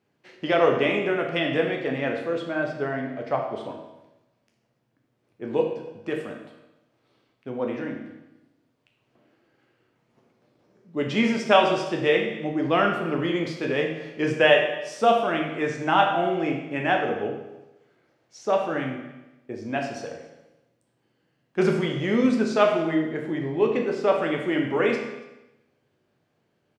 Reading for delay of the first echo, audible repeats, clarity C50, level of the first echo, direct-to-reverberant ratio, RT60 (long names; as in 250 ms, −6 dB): 283 ms, 1, 4.5 dB, −22.0 dB, 0.5 dB, 1.0 s